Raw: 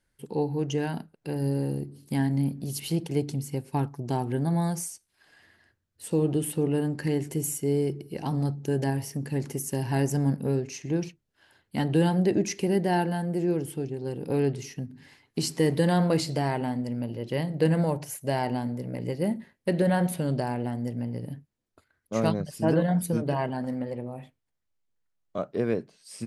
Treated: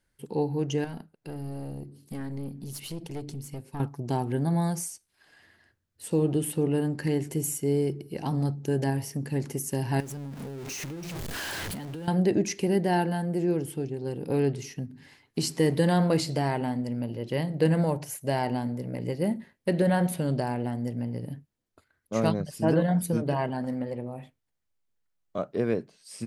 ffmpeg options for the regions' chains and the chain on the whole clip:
ffmpeg -i in.wav -filter_complex "[0:a]asettb=1/sr,asplit=3[link_01][link_02][link_03];[link_01]atrim=end=0.844[link_04];[link_02]atrim=start=0.84:end=3.8,asetpts=PTS-STARTPTS,afade=type=in:duration=0.004:curve=qsin,afade=type=out:start_time=2.956:duration=0.004:curve=qsin,aeval=exprs='(tanh(14.1*val(0)+0.6)-tanh(0.6))/14.1':channel_layout=same,acompressor=threshold=-35dB:ratio=2:attack=3.2:release=140:knee=1:detection=peak[link_05];[link_03]atrim=start=3.796[link_06];[link_04][link_05]acrossfade=duration=0.004:curve1=hsin:curve2=qsin[link_07];[link_07][link_06]acrossfade=duration=0.004:curve1=qsin:curve2=hsin,asettb=1/sr,asplit=3[link_08][link_09][link_10];[link_08]atrim=end=10.004[link_11];[link_09]atrim=start=10:end=12.08,asetpts=PTS-STARTPTS,afade=type=in:duration=0.004:curve=qsin,afade=type=out:start_time=2.076:duration=0.004:curve=qsin,aeval=exprs='val(0)+0.5*0.0422*sgn(val(0))':channel_layout=same,acompressor=threshold=-34dB:ratio=16:attack=3.2:release=140:knee=1:detection=peak[link_12];[link_10]atrim=start=12.076[link_13];[link_11][link_12]acrossfade=duration=0.004:curve1=hsin:curve2=qsin[link_14];[link_14][link_13]acrossfade=duration=0.004:curve1=qsin:curve2=hsin" out.wav

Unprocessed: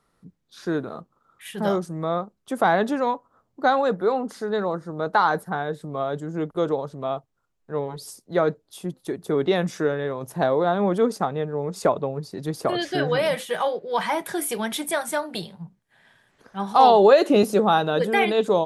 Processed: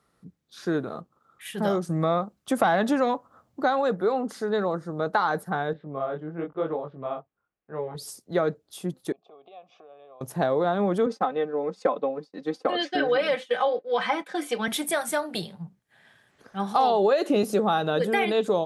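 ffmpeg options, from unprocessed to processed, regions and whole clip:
ffmpeg -i in.wav -filter_complex "[0:a]asettb=1/sr,asplit=3[link_01][link_02][link_03];[link_01]atrim=end=1.894[link_04];[link_02]atrim=start=1.89:end=3.64,asetpts=PTS-STARTPTS,afade=type=in:duration=0.004:curve=qsin,afade=type=out:start_time=1.746:duration=0.004:curve=qsin,equalizer=frequency=410:width=5.2:gain=-7,acontrast=48[link_05];[link_03]atrim=start=3.636[link_06];[link_04][link_05]acrossfade=duration=0.004:curve1=hsin:curve2=qsin[link_07];[link_07][link_06]acrossfade=duration=0.004:curve1=qsin:curve2=hsin,asettb=1/sr,asplit=3[link_08][link_09][link_10];[link_08]atrim=end=5.734[link_11];[link_09]atrim=start=5.73:end=7.95,asetpts=PTS-STARTPTS,afade=type=in:duration=0.004:curve=qsin,afade=type=out:start_time=2.216:duration=0.004:curve=qsin,lowpass=frequency=2800:width=0.5412,lowpass=frequency=2800:width=1.3066,lowshelf=frequency=190:gain=-7,flanger=delay=18.5:depth=7.7:speed=1[link_12];[link_10]atrim=start=7.946[link_13];[link_11][link_12]acrossfade=duration=0.004:curve1=hsin:curve2=qsin[link_14];[link_14][link_13]acrossfade=duration=0.004:curve1=qsin:curve2=hsin,asettb=1/sr,asplit=3[link_15][link_16][link_17];[link_15]atrim=end=9.124[link_18];[link_16]atrim=start=9.12:end=10.21,asetpts=PTS-STARTPTS,afade=type=in:duration=0.004:curve=qsin,afade=type=out:start_time=1.086:duration=0.004:curve=qsin,acompressor=threshold=-31dB:ratio=6:attack=3.2:release=140:knee=1:detection=peak,asplit=3[link_19][link_20][link_21];[link_19]bandpass=frequency=730:width_type=q:width=8,volume=0dB[link_22];[link_20]bandpass=frequency=1090:width_type=q:width=8,volume=-6dB[link_23];[link_21]bandpass=frequency=2440:width_type=q:width=8,volume=-9dB[link_24];[link_22][link_23][link_24]amix=inputs=3:normalize=0,highpass=100,equalizer=frequency=170:width_type=q:width=4:gain=-6,equalizer=frequency=330:width_type=q:width=4:gain=-4,equalizer=frequency=1500:width_type=q:width=4:gain=-10,equalizer=frequency=3300:width_type=q:width=4:gain=7,lowpass=frequency=5800:width=0.5412,lowpass=frequency=5800:width=1.3066[link_25];[link_17]atrim=start=10.206[link_26];[link_18][link_25]acrossfade=duration=0.004:curve1=hsin:curve2=qsin[link_27];[link_27][link_26]acrossfade=duration=0.004:curve1=qsin:curve2=hsin,asettb=1/sr,asplit=3[link_28][link_29][link_30];[link_28]atrim=end=11.064[link_31];[link_29]atrim=start=11.06:end=14.68,asetpts=PTS-STARTPTS,afade=type=in:duration=0.004:curve=qsin,afade=type=out:start_time=3.616:duration=0.004:curve=qsin,agate=range=-33dB:threshold=-30dB:ratio=3:release=100:detection=peak,highpass=270,lowpass=4500,aecho=1:1:3.9:0.69,atrim=end_sample=159642[link_32];[link_30]atrim=start=14.676[link_33];[link_31][link_32]acrossfade=duration=0.004:curve1=hsin:curve2=qsin[link_34];[link_34][link_33]acrossfade=duration=0.004:curve1=qsin:curve2=hsin,highpass=45,bandreject=frequency=960:width=14,acompressor=threshold=-20dB:ratio=3" out.wav

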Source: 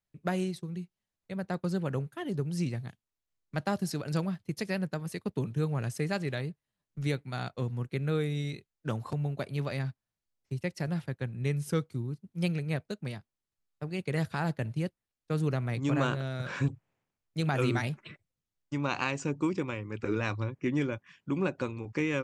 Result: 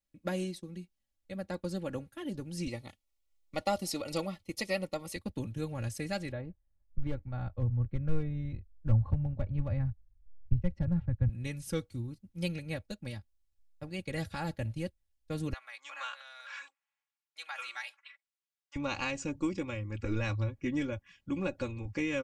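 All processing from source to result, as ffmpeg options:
ffmpeg -i in.wav -filter_complex "[0:a]asettb=1/sr,asplit=3[link_01][link_02][link_03];[link_01]atrim=end=2.674[link_04];[link_02]atrim=start=2.67:end=5.16,asetpts=PTS-STARTPTS,afade=type=in:duration=0.004:curve=qsin,afade=type=out:start_time=2.486:duration=0.004:curve=qsin,bass=frequency=250:gain=-11,treble=frequency=4000:gain=-2,acontrast=34,asuperstop=centerf=1600:order=12:qfactor=5.4[link_05];[link_03]atrim=start=5.156[link_06];[link_04][link_05]acrossfade=duration=0.004:curve1=hsin:curve2=qsin[link_07];[link_07][link_06]acrossfade=duration=0.004:curve1=qsin:curve2=hsin,asettb=1/sr,asplit=3[link_08][link_09][link_10];[link_08]atrim=end=6.324[link_11];[link_09]atrim=start=6.32:end=11.29,asetpts=PTS-STARTPTS,afade=type=in:duration=0.004:curve=qsin,afade=type=out:start_time=4.966:duration=0.004:curve=qsin,lowpass=1200,volume=23dB,asoftclip=hard,volume=-23dB,asubboost=boost=9:cutoff=130[link_12];[link_10]atrim=start=11.286[link_13];[link_11][link_12]acrossfade=duration=0.004:curve1=hsin:curve2=qsin[link_14];[link_14][link_13]acrossfade=duration=0.004:curve1=qsin:curve2=hsin,asettb=1/sr,asplit=3[link_15][link_16][link_17];[link_15]atrim=end=15.534[link_18];[link_16]atrim=start=15.53:end=18.76,asetpts=PTS-STARTPTS,afade=type=in:duration=0.004:curve=qsin,afade=type=out:start_time=3.226:duration=0.004:curve=qsin,highpass=frequency=1000:width=0.5412,highpass=frequency=1000:width=1.3066,aemphasis=mode=reproduction:type=cd[link_19];[link_17]atrim=start=18.756[link_20];[link_18][link_19]acrossfade=duration=0.004:curve1=hsin:curve2=qsin[link_21];[link_21][link_20]acrossfade=duration=0.004:curve1=qsin:curve2=hsin,equalizer=frequency=1200:width=1:gain=-6,aecho=1:1:3.6:0.75,asubboost=boost=8:cutoff=82,volume=-2dB" out.wav

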